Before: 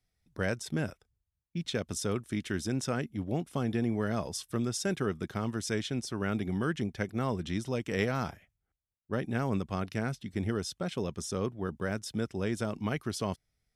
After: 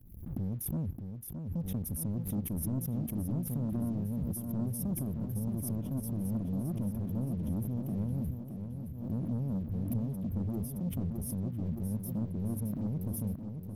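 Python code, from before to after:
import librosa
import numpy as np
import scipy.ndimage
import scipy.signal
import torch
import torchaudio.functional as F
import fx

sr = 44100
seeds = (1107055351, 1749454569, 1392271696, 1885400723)

p1 = fx.dereverb_blind(x, sr, rt60_s=0.92)
p2 = scipy.signal.sosfilt(scipy.signal.cheby2(4, 40, [540.0, 8000.0], 'bandstop', fs=sr, output='sos'), p1)
p3 = fx.peak_eq(p2, sr, hz=64.0, db=3.0, octaves=2.2)
p4 = fx.over_compress(p3, sr, threshold_db=-48.0, ratio=-1.0)
p5 = p3 + F.gain(torch.from_numpy(p4), 3.0).numpy()
p6 = fx.leveller(p5, sr, passes=2)
p7 = fx.vibrato(p6, sr, rate_hz=5.4, depth_cents=45.0)
p8 = p7 + fx.echo_feedback(p7, sr, ms=619, feedback_pct=51, wet_db=-7.0, dry=0)
p9 = fx.pre_swell(p8, sr, db_per_s=59.0)
y = F.gain(torch.from_numpy(p9), -6.0).numpy()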